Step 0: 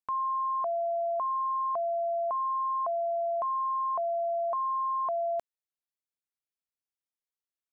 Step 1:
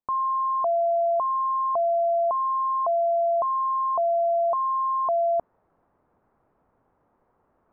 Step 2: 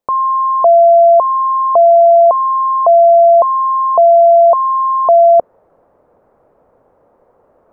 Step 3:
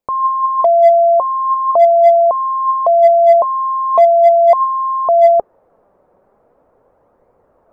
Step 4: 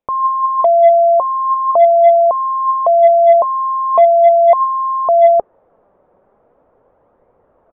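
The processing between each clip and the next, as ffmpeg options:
-af "areverse,acompressor=mode=upward:threshold=-38dB:ratio=2.5,areverse,lowpass=f=1.1k:w=0.5412,lowpass=f=1.1k:w=1.3066,volume=7.5dB"
-af "equalizer=f=530:t=o:w=0.89:g=12,volume=9dB"
-filter_complex "[0:a]flanger=delay=0.4:depth=5:regen=65:speed=0.41:shape=sinusoidal,asplit=2[a][b];[b]volume=7.5dB,asoftclip=hard,volume=-7.5dB,volume=-6.5dB[c];[a][c]amix=inputs=2:normalize=0,volume=-1dB"
-af "aresample=8000,aresample=44100"

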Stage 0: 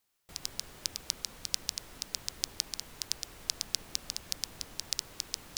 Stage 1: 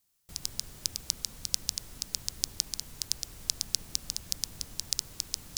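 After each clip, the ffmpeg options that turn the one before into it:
-af "bass=f=250:g=10,treble=f=4k:g=9,volume=-4dB"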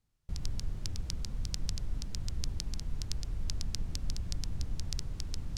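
-af "aemphasis=mode=reproduction:type=riaa,volume=-1.5dB"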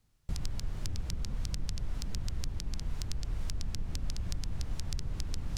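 -filter_complex "[0:a]acrossover=split=530|3500[a][b][c];[a]acompressor=threshold=-38dB:ratio=4[d];[b]acompressor=threshold=-55dB:ratio=4[e];[c]acompressor=threshold=-52dB:ratio=4[f];[d][e][f]amix=inputs=3:normalize=0,volume=7.5dB"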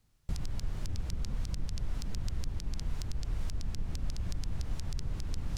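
-af "alimiter=limit=-23.5dB:level=0:latency=1:release=38,volume=1dB"

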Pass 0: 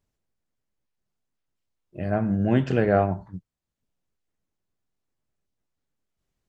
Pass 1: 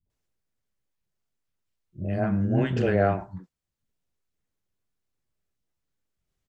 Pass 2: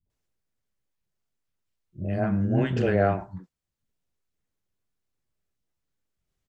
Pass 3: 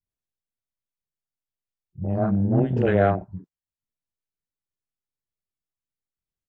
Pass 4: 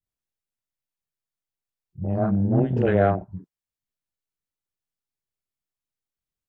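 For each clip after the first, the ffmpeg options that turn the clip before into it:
-filter_complex "[0:a]acrossover=split=250|790[a][b][c];[b]adelay=60[d];[c]adelay=100[e];[a][d][e]amix=inputs=3:normalize=0"
-af anull
-af "afwtdn=0.0282,volume=3dB"
-af "adynamicequalizer=threshold=0.0178:dfrequency=1600:dqfactor=0.7:tfrequency=1600:tqfactor=0.7:attack=5:release=100:ratio=0.375:range=2.5:mode=cutabove:tftype=highshelf"

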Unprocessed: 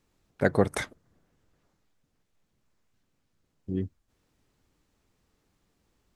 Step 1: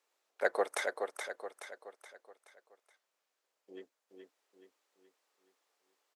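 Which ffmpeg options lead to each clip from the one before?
-filter_complex "[0:a]highpass=f=490:w=0.5412,highpass=f=490:w=1.3066,asplit=2[a][b];[b]aecho=0:1:424|848|1272|1696|2120:0.531|0.239|0.108|0.0484|0.0218[c];[a][c]amix=inputs=2:normalize=0,volume=-3.5dB"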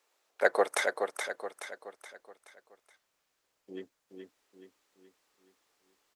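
-af "asubboost=boost=5:cutoff=230,volume=6dB"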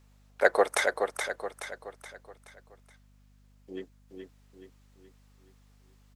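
-af "aeval=exprs='val(0)+0.000794*(sin(2*PI*50*n/s)+sin(2*PI*2*50*n/s)/2+sin(2*PI*3*50*n/s)/3+sin(2*PI*4*50*n/s)/4+sin(2*PI*5*50*n/s)/5)':c=same,volume=3dB"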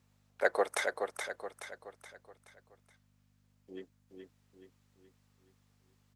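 -af "highpass=f=65:w=0.5412,highpass=f=65:w=1.3066,volume=-6.5dB"

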